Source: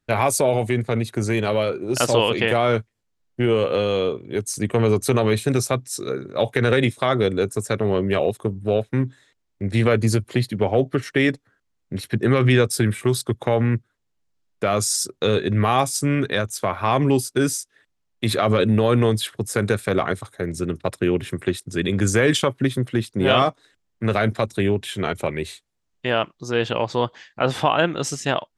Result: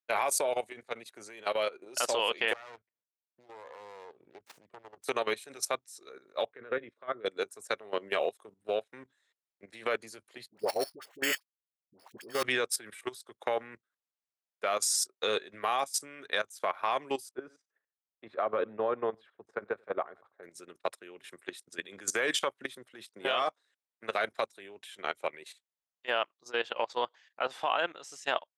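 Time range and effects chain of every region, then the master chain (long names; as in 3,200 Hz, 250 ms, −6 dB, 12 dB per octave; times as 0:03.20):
0:02.53–0:05.04: phase distortion by the signal itself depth 0.74 ms + RIAA equalisation playback + downward compressor 4 to 1, threshold −29 dBFS
0:06.45–0:07.26: low-pass filter 1,300 Hz + parametric band 810 Hz −11 dB 0.6 octaves
0:10.48–0:12.43: sample-rate reduction 4,900 Hz + slack as between gear wheels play −32.5 dBFS + all-pass dispersion highs, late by 76 ms, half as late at 760 Hz
0:17.31–0:20.43: low-pass filter 1,200 Hz + single-tap delay 92 ms −20.5 dB
whole clip: high-pass filter 610 Hz 12 dB per octave; output level in coarse steps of 13 dB; expander for the loud parts 1.5 to 1, over −42 dBFS; level −2 dB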